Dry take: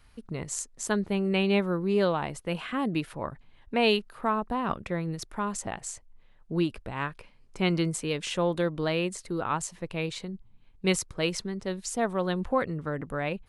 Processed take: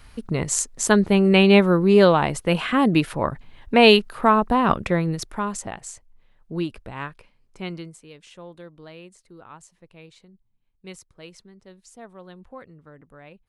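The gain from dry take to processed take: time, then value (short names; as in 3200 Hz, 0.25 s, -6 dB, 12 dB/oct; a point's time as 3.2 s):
4.86 s +10.5 dB
5.84 s 0 dB
6.96 s 0 dB
7.73 s -7 dB
7.99 s -15 dB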